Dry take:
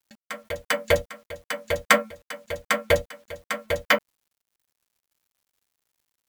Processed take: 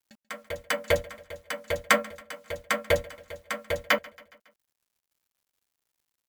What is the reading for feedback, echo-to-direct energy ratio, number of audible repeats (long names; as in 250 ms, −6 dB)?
57%, −21.5 dB, 3